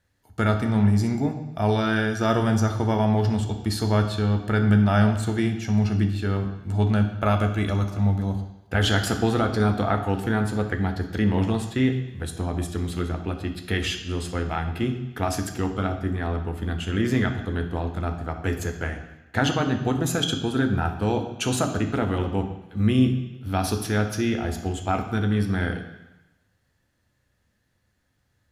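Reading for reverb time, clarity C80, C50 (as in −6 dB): 1.0 s, 10.5 dB, 8.5 dB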